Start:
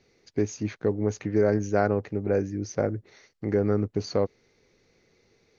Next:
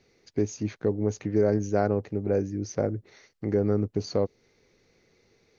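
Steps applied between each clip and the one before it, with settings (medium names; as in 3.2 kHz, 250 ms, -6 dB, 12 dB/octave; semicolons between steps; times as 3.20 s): dynamic bell 1.7 kHz, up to -6 dB, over -44 dBFS, Q 0.78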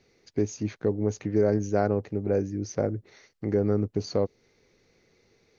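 no audible change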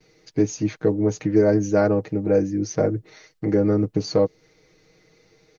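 gate with hold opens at -59 dBFS; comb 6.4 ms, depth 79%; trim +4.5 dB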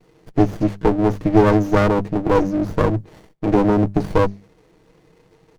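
hum notches 50/100/150/200 Hz; sliding maximum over 33 samples; trim +6 dB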